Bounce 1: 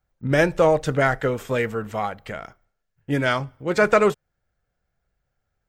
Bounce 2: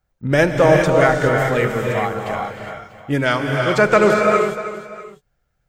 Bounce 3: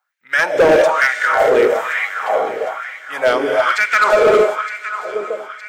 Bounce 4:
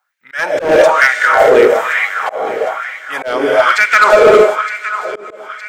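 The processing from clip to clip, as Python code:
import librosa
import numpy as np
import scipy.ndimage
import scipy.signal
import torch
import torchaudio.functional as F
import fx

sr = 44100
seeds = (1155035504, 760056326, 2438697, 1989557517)

y1 = fx.echo_multitap(x, sr, ms=(309, 644), db=(-13.0, -19.0))
y1 = fx.rev_gated(y1, sr, seeds[0], gate_ms=440, shape='rising', drr_db=1.0)
y1 = F.gain(torch.from_numpy(y1), 3.0).numpy()
y2 = fx.echo_alternate(y1, sr, ms=457, hz=810.0, feedback_pct=71, wet_db=-10.0)
y2 = fx.filter_lfo_highpass(y2, sr, shape='sine', hz=1.1, low_hz=380.0, high_hz=2100.0, q=3.6)
y2 = np.clip(y2, -10.0 ** (-7.0 / 20.0), 10.0 ** (-7.0 / 20.0))
y3 = fx.auto_swell(y2, sr, attack_ms=218.0)
y3 = F.gain(torch.from_numpy(y3), 5.0).numpy()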